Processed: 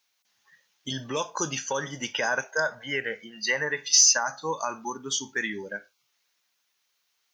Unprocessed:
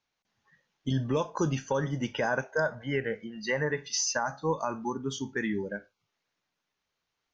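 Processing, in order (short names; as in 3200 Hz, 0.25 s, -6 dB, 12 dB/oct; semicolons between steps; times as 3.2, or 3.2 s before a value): tilt +4 dB/oct; in parallel at -10.5 dB: overloaded stage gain 14 dB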